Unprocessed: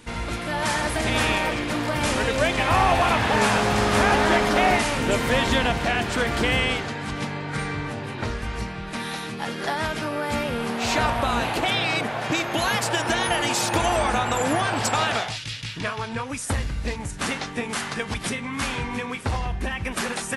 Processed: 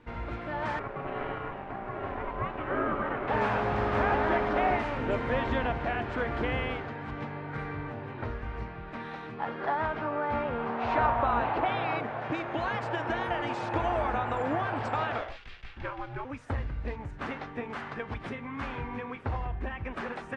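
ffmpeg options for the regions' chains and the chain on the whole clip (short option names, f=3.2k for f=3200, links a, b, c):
-filter_complex "[0:a]asettb=1/sr,asplit=3[a][b][c];[a]atrim=end=0.794[d];[b]atrim=start=0.79:end=3.28,asetpts=PTS-STARTPTS,afade=t=in:d=0.004:c=qsin,afade=t=out:st=2.486:d=0.004:c=qsin,lowpass=1.9k,aeval=exprs='sgn(val(0))*max(abs(val(0))-0.00944,0)':c=same,aeval=exprs='val(0)*sin(2*PI*490*n/s)':c=same[e];[c]atrim=start=3.276[f];[d][e]acrossfade=d=0.004:c1=hsin:c2=qsin[g];[g][f]acrossfade=d=0.004:c1=qsin:c2=hsin,asettb=1/sr,asplit=3[h][i][j];[h]atrim=end=9.374[k];[i]atrim=start=9.37:end=12,asetpts=PTS-STARTPTS,afade=t=in:d=0.004:c=qsin,afade=t=out:st=2.626:d=0.004:c=qsin,lowpass=5.4k,equalizer=f=960:t=o:w=1.3:g=6[l];[j]atrim=start=11.996[m];[k][l]acrossfade=d=0.004:c1=hsin:c2=qsin[n];[n][m]acrossfade=d=0.004:c1=qsin:c2=hsin,asettb=1/sr,asplit=3[o][p][q];[o]atrim=end=15.184[r];[p]atrim=start=15.18:end=16.25,asetpts=PTS-STARTPTS,afade=t=in:d=0.004:c=qsin,afade=t=out:st=1.066:d=0.004:c=qsin,aeval=exprs='sgn(val(0))*max(abs(val(0))-0.00473,0)':c=same,afreqshift=-98[s];[q]atrim=start=16.246[t];[r][s]acrossfade=d=0.004:c1=hsin:c2=qsin[u];[u][t]acrossfade=d=0.004:c1=qsin:c2=hsin,lowpass=1.7k,equalizer=f=190:w=3.7:g=-7.5,volume=-6dB"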